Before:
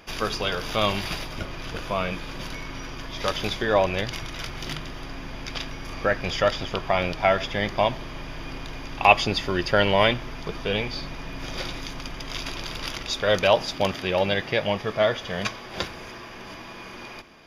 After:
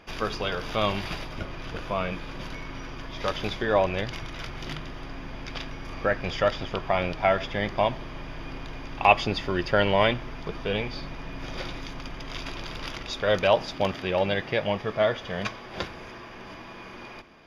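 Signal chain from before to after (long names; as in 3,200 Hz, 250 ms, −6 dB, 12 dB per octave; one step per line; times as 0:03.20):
high-shelf EQ 5,200 Hz −11.5 dB
level −1.5 dB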